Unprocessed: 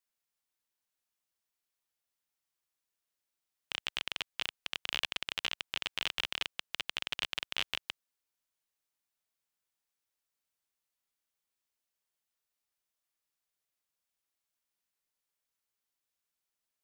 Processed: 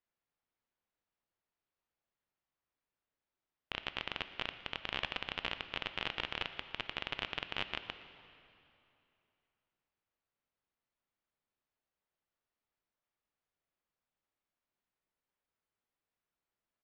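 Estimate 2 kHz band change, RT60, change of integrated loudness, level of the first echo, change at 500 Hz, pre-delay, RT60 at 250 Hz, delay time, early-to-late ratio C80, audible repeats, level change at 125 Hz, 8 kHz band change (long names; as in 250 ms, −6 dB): −2.0 dB, 2.9 s, −3.5 dB, −22.0 dB, +4.0 dB, 12 ms, 3.0 s, 116 ms, 11.5 dB, 1, +5.5 dB, −16.5 dB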